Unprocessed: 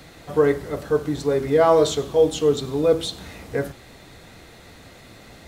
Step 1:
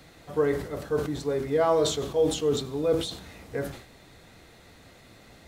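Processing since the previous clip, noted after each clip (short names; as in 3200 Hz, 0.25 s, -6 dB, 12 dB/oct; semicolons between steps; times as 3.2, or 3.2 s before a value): sustainer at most 95 dB/s; gain -7 dB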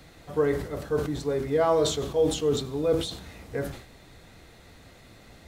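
low shelf 80 Hz +6.5 dB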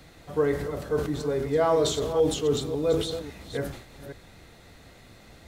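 reverse delay 0.275 s, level -10 dB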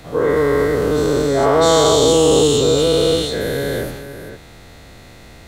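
spectral dilation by 0.48 s; gain +3.5 dB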